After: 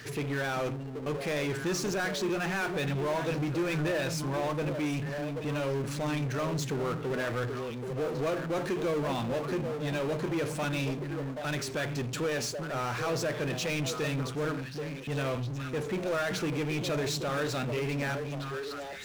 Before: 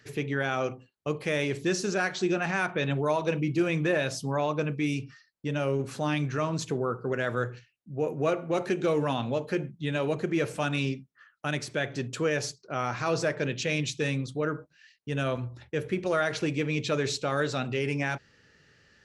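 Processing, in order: delay with a stepping band-pass 0.39 s, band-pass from 190 Hz, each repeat 1.4 oct, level -5.5 dB; power-law curve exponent 0.5; gain -9 dB

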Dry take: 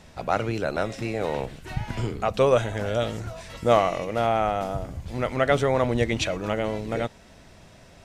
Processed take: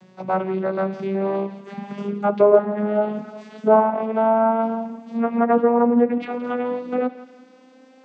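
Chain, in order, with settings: vocoder on a gliding note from F#3, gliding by +6 st; treble ducked by the level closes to 1300 Hz, closed at -20.5 dBFS; dynamic EQ 910 Hz, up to +6 dB, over -37 dBFS, Q 1; thinning echo 0.169 s, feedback 39%, high-pass 560 Hz, level -15 dB; on a send at -14 dB: reverb, pre-delay 3 ms; on the sum: gain +3.5 dB

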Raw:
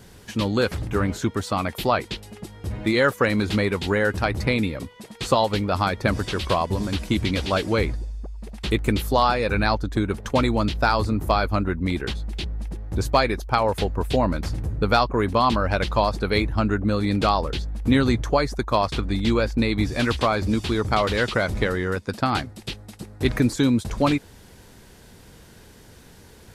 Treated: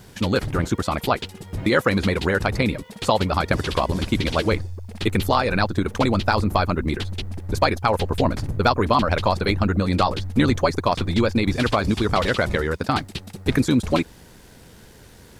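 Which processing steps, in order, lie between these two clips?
bit-crush 11-bit; granular stretch 0.58×, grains 24 ms; gain +2.5 dB

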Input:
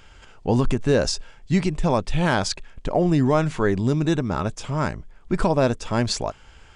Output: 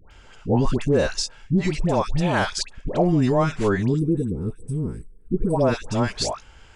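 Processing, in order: spectral gain 3.88–5.5, 510–7800 Hz -25 dB; dispersion highs, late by 0.11 s, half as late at 1000 Hz

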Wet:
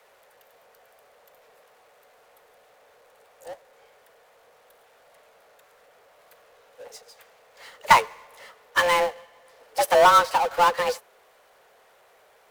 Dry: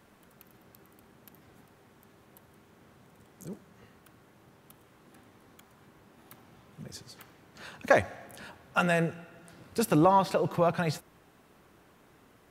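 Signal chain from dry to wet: frequency shift +350 Hz; power-law curve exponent 0.5; upward expander 2.5:1, over -31 dBFS; gain +3.5 dB

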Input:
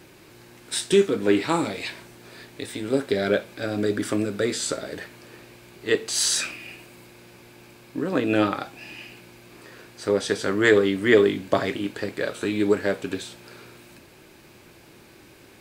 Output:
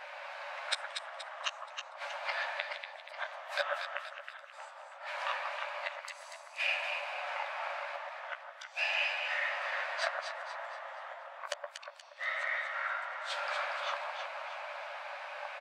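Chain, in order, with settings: low-pass opened by the level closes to 2000 Hz, open at -21.5 dBFS; in parallel at +1 dB: compressor 6:1, threshold -35 dBFS, peak gain reduction 21.5 dB; on the sum: flipped gate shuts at -20 dBFS, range -42 dB; doubler 12 ms -7.5 dB; on a send: echo with dull and thin repeats by turns 0.119 s, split 1600 Hz, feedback 66%, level -2.5 dB; on the sum: echoes that change speed 0.496 s, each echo -5 st, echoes 3; brick-wall FIR high-pass 530 Hz; gain +4 dB

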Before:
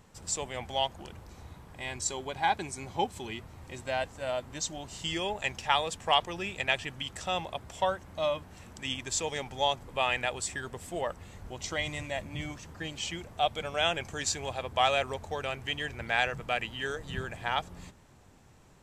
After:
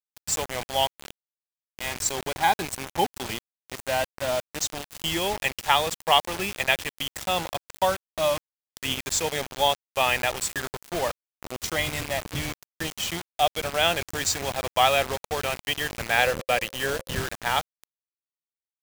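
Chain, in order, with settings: bit-crush 6-bit; 16.17–17.18 bell 530 Hz +11.5 dB 0.21 oct; gain +5.5 dB

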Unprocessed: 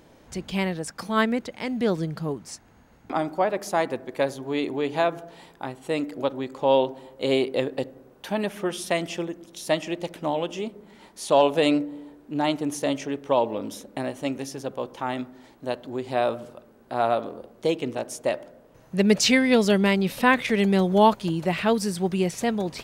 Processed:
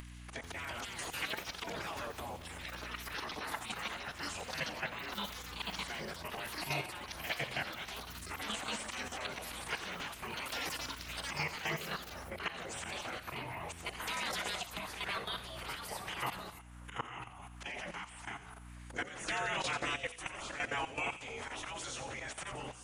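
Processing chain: inharmonic rescaling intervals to 90%; spectral gate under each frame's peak -20 dB weak; bell 4600 Hz -10 dB 1 oct; auto swell 0.121 s; de-hum 61.82 Hz, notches 24; level quantiser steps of 14 dB; hum 60 Hz, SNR 22 dB; upward compressor, threshold -41 dBFS; thin delay 87 ms, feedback 54%, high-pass 3100 Hz, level -8 dB; echoes that change speed 0.44 s, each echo +6 st, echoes 2; gain +6.5 dB

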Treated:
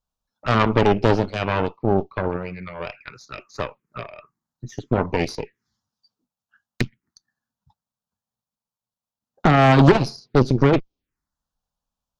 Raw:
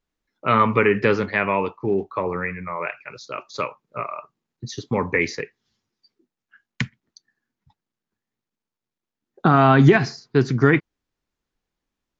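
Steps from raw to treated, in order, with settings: envelope phaser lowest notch 350 Hz, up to 1800 Hz, full sweep at -23 dBFS; added harmonics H 8 -13 dB, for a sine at -2.5 dBFS

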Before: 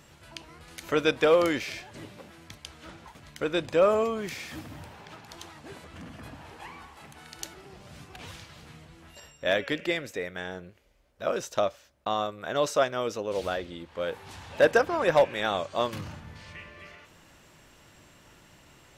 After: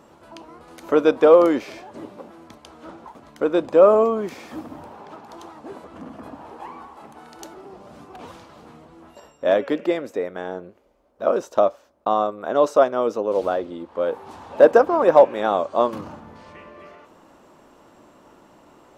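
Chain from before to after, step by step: band shelf 510 Hz +14 dB 3 oct; gain -5 dB

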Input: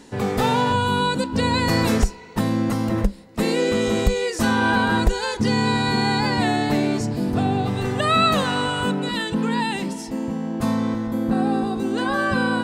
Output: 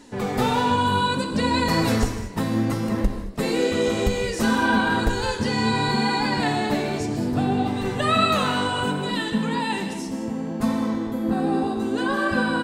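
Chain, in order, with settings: frequency-shifting echo 0.154 s, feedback 32%, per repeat +67 Hz, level -17.5 dB; flange 0.65 Hz, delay 2.9 ms, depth 9.8 ms, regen +38%; non-linear reverb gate 0.25 s flat, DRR 6.5 dB; gain +1.5 dB

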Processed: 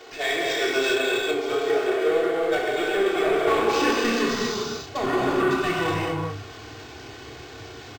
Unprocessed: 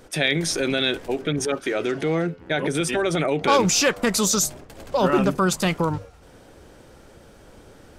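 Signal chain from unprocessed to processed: zero-crossing step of -24 dBFS; gate -19 dBFS, range -17 dB; high shelf 7800 Hz -7.5 dB; comb 2.7 ms, depth 85%; compressor 5:1, threshold -21 dBFS, peak gain reduction 11 dB; treble ducked by the level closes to 2800 Hz, closed at -22.5 dBFS; high shelf 2400 Hz +9.5 dB; high-pass sweep 490 Hz -> 110 Hz, 3.41–4.34; hard clip -19 dBFS, distortion -11 dB; flutter echo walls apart 5.2 m, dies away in 0.21 s; non-linear reverb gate 0.44 s flat, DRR -5 dB; decimation joined by straight lines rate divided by 4×; gain -4 dB

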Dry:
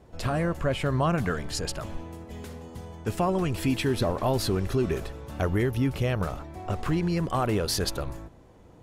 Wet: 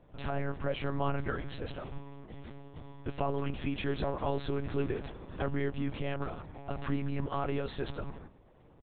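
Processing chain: doubler 13 ms -10 dB; monotone LPC vocoder at 8 kHz 140 Hz; gain -7 dB

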